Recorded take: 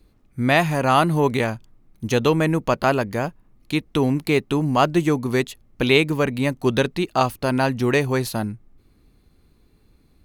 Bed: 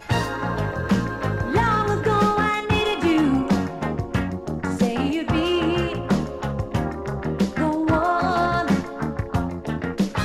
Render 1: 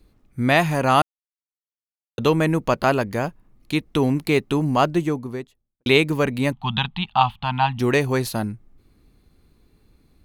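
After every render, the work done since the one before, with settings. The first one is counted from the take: 1.02–2.18 s: mute; 4.62–5.86 s: studio fade out; 6.52–7.79 s: FFT filter 210 Hz 0 dB, 320 Hz -24 dB, 540 Hz -25 dB, 820 Hz +8 dB, 1.5 kHz -4 dB, 2.1 kHz -4 dB, 3.3 kHz +10 dB, 5.5 kHz -20 dB, 9.9 kHz -25 dB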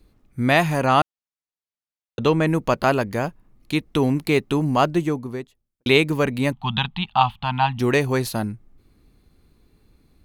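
0.86–2.47 s: distance through air 52 m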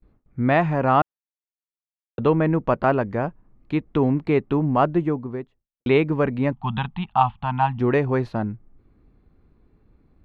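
gate with hold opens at -49 dBFS; low-pass 1.6 kHz 12 dB/octave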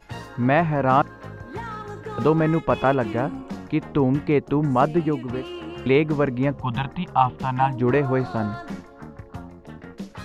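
add bed -13.5 dB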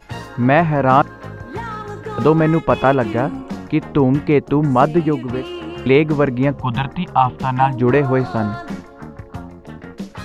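trim +5.5 dB; peak limiter -1 dBFS, peak gain reduction 2.5 dB

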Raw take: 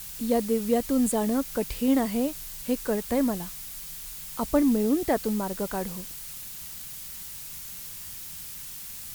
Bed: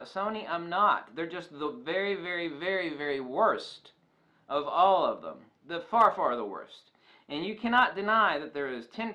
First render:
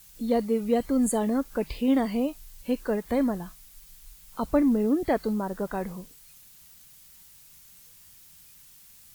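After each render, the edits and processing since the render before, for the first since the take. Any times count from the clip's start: noise print and reduce 13 dB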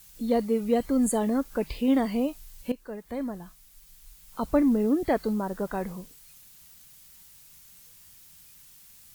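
2.72–4.55 s: fade in, from -14 dB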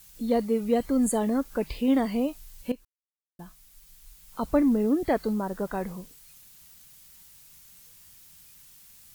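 2.85–3.39 s: mute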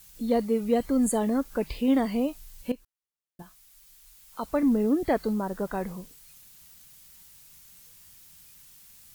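3.42–4.63 s: bass shelf 340 Hz -10 dB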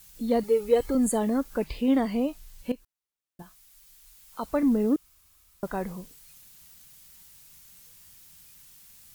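0.43–0.95 s: comb 2.3 ms, depth 75%; 1.64–2.71 s: treble shelf 6.7 kHz -4.5 dB; 4.96–5.63 s: room tone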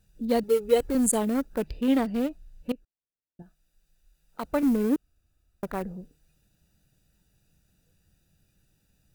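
local Wiener filter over 41 samples; treble shelf 2.1 kHz +9 dB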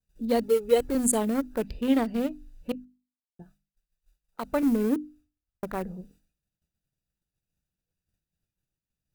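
expander -54 dBFS; hum notches 50/100/150/200/250/300 Hz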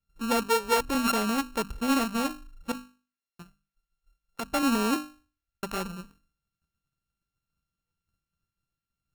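sorted samples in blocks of 32 samples; saturation -17 dBFS, distortion -16 dB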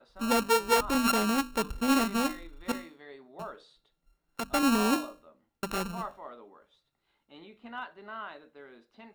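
add bed -16.5 dB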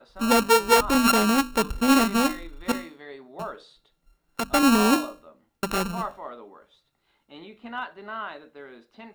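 trim +6.5 dB

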